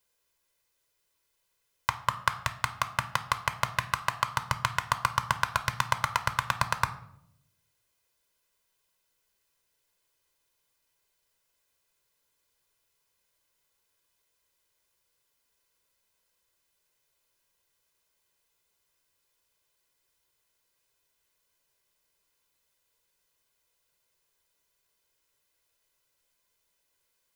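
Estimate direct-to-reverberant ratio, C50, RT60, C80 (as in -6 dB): 9.5 dB, 14.0 dB, 0.75 s, 17.5 dB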